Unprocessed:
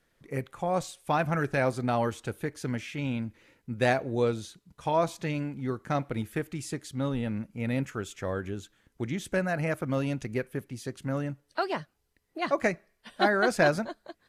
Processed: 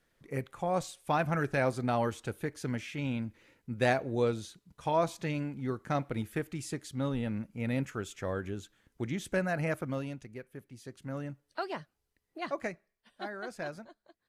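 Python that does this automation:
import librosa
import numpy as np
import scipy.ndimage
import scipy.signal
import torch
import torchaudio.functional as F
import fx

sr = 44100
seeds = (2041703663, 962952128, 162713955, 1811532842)

y = fx.gain(x, sr, db=fx.line((9.76, -2.5), (10.34, -14.0), (11.26, -6.5), (12.4, -6.5), (13.12, -16.0)))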